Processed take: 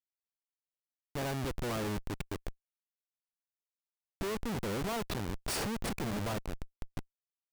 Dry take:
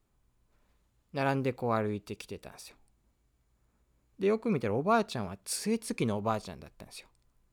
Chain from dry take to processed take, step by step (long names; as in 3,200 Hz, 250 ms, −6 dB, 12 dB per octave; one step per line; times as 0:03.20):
comparator with hysteresis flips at −36 dBFS